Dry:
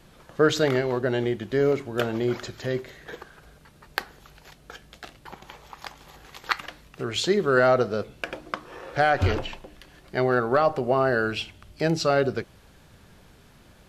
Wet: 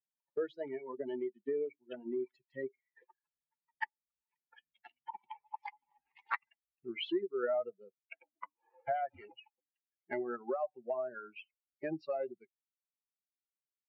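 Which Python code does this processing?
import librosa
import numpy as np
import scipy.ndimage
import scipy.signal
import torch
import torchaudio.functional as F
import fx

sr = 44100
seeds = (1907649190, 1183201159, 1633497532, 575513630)

y = fx.bin_expand(x, sr, power=3.0)
y = fx.doppler_pass(y, sr, speed_mps=13, closest_m=10.0, pass_at_s=5.47)
y = fx.cabinet(y, sr, low_hz=370.0, low_slope=12, high_hz=2500.0, hz=(380.0, 650.0, 1100.0, 1600.0, 2300.0), db=(9, 8, -7, -6, -3))
y = fx.band_squash(y, sr, depth_pct=100)
y = y * 10.0 ** (5.0 / 20.0)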